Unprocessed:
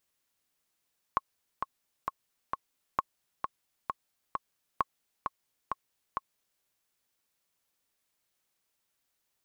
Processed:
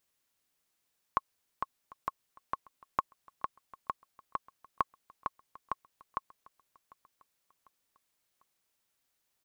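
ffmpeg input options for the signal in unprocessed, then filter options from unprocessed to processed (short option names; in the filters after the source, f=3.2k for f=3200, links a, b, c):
-f lavfi -i "aevalsrc='pow(10,(-12.5-5.5*gte(mod(t,4*60/132),60/132))/20)*sin(2*PI*1090*mod(t,60/132))*exp(-6.91*mod(t,60/132)/0.03)':d=5.45:s=44100"
-af "aecho=1:1:748|1496|2244:0.0708|0.0347|0.017"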